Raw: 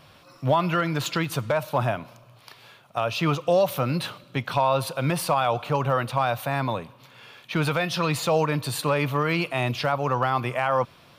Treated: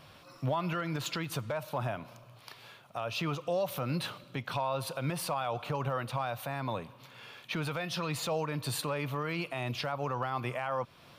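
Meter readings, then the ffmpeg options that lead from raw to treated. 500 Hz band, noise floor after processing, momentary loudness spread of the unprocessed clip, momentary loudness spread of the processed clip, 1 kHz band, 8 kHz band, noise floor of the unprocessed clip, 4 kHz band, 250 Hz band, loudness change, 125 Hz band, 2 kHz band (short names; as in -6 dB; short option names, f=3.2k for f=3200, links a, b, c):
-10.5 dB, -56 dBFS, 7 LU, 12 LU, -10.5 dB, -6.5 dB, -54 dBFS, -7.0 dB, -9.5 dB, -9.5 dB, -9.0 dB, -9.5 dB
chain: -af "alimiter=limit=-21dB:level=0:latency=1:release=266,volume=-2.5dB"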